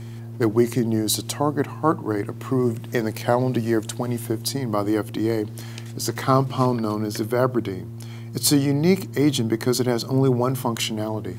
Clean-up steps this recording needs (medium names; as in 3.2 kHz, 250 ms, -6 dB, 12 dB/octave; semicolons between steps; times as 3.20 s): de-hum 115 Hz, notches 3